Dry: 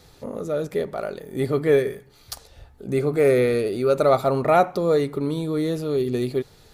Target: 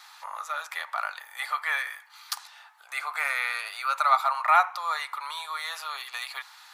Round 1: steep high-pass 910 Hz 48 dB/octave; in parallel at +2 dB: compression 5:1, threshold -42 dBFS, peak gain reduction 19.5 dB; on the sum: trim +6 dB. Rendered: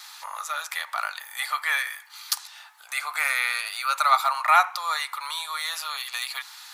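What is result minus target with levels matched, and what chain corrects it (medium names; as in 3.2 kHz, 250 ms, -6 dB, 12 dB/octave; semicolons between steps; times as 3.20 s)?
4 kHz band +4.0 dB
steep high-pass 910 Hz 48 dB/octave; treble shelf 2.6 kHz -11.5 dB; in parallel at +2 dB: compression 5:1, threshold -42 dBFS, peak gain reduction 17.5 dB; on the sum: trim +6 dB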